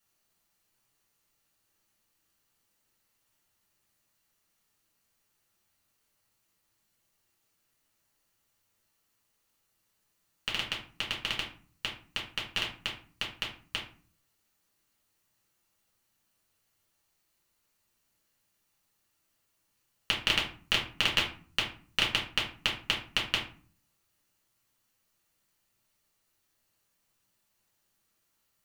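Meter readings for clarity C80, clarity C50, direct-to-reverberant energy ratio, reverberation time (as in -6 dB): 12.5 dB, 7.5 dB, -3.5 dB, 0.40 s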